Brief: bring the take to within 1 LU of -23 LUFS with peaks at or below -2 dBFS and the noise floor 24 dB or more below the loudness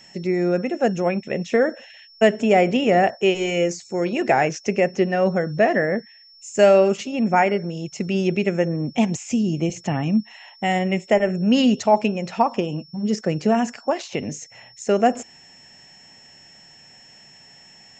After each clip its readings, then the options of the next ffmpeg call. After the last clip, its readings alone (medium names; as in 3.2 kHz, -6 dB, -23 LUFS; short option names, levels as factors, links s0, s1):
steady tone 5.4 kHz; tone level -47 dBFS; loudness -21.0 LUFS; peak level -3.5 dBFS; loudness target -23.0 LUFS
-> -af "bandreject=f=5400:w=30"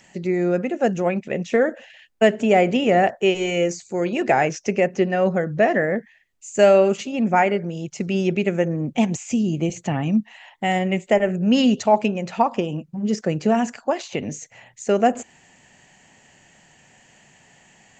steady tone not found; loudness -21.0 LUFS; peak level -3.5 dBFS; loudness target -23.0 LUFS
-> -af "volume=0.794"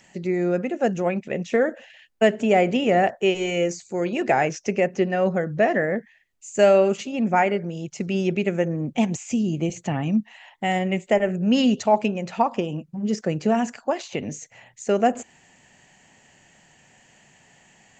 loudness -23.0 LUFS; peak level -6.0 dBFS; noise floor -57 dBFS